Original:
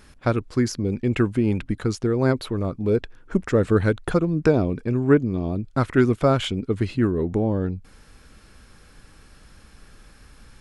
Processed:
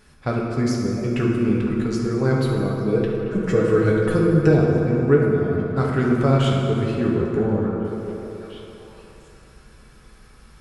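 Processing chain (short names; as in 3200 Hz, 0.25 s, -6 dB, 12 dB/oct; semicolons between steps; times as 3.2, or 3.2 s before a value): 2.31–4.54 comb 6.3 ms; delay with a stepping band-pass 0.7 s, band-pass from 460 Hz, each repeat 1.4 oct, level -9.5 dB; reverb RT60 3.2 s, pre-delay 3 ms, DRR -3.5 dB; gain -4.5 dB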